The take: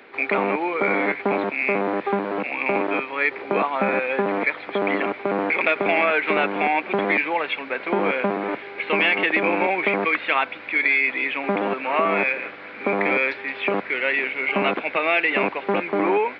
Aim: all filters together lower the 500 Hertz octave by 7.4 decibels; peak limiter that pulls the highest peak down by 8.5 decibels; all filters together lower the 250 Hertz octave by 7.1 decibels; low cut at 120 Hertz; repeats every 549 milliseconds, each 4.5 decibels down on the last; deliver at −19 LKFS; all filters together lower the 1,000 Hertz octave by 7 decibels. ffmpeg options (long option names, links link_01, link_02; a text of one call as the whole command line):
ffmpeg -i in.wav -af "highpass=120,equalizer=frequency=250:width_type=o:gain=-7,equalizer=frequency=500:width_type=o:gain=-5.5,equalizer=frequency=1000:width_type=o:gain=-7,alimiter=limit=-17.5dB:level=0:latency=1,aecho=1:1:549|1098|1647|2196|2745|3294|3843|4392|4941:0.596|0.357|0.214|0.129|0.0772|0.0463|0.0278|0.0167|0.01,volume=6.5dB" out.wav